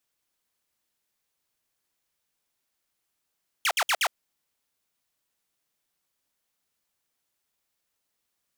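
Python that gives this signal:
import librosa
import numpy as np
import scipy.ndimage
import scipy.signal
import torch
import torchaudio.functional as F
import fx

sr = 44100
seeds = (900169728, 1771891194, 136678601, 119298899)

y = fx.laser_zaps(sr, level_db=-18.5, start_hz=3500.0, end_hz=580.0, length_s=0.06, wave='saw', shots=4, gap_s=0.06)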